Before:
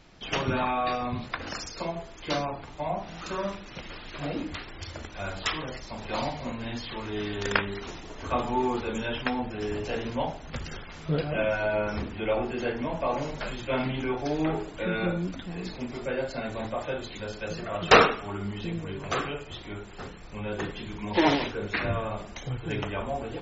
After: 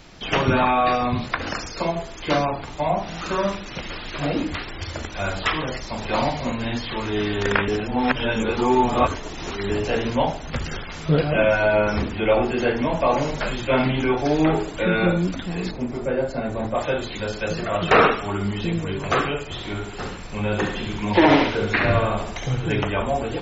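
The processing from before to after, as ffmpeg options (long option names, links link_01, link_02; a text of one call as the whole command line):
ffmpeg -i in.wav -filter_complex "[0:a]asettb=1/sr,asplit=3[link_01][link_02][link_03];[link_01]atrim=end=15.714[link_04];[link_02]atrim=start=15.71:end=16.75,asetpts=PTS-STARTPTS,afade=type=in:duration=0.004:curve=qsin,afade=type=out:start_time=1.036:duration=0.004:curve=qsin,equalizer=frequency=3900:width=0.43:gain=-12[link_05];[link_03]atrim=start=16.746[link_06];[link_04][link_05]acrossfade=duration=0.004:curve1=hsin:curve2=qsin[link_07];[link_07][link_06]acrossfade=duration=0.004:curve1=qsin:curve2=hsin,asettb=1/sr,asplit=3[link_08][link_09][link_10];[link_08]atrim=end=19.444[link_11];[link_09]atrim=start=19.44:end=22.66,asetpts=PTS-STARTPTS,afade=type=in:duration=0.004:curve=qsin,afade=type=out:start_time=3.216:duration=0.004:curve=qsin,aecho=1:1:68|136|204|272|340:0.447|0.205|0.0945|0.0435|0.02,atrim=end_sample=142002[link_12];[link_10]atrim=start=22.656[link_13];[link_11][link_12]acrossfade=duration=0.004:curve1=hsin:curve2=qsin[link_14];[link_14][link_13]acrossfade=duration=0.004:curve1=qsin:curve2=hsin,asplit=3[link_15][link_16][link_17];[link_15]atrim=end=7.682[link_18];[link_16]atrim=start=7.678:end=9.702,asetpts=PTS-STARTPTS,areverse[link_19];[link_17]atrim=start=9.698[link_20];[link_18][link_19]acrossfade=duration=0.004:curve1=hsin:curve2=hsin[link_21];[link_21][link_20]acrossfade=duration=0.004:curve1=hsin:curve2=hsin,highshelf=frequency=4700:gain=5,acrossover=split=2900[link_22][link_23];[link_23]acompressor=threshold=-45dB:ratio=4:attack=1:release=60[link_24];[link_22][link_24]amix=inputs=2:normalize=0,alimiter=level_in=12dB:limit=-1dB:release=50:level=0:latency=1,volume=-3.5dB" out.wav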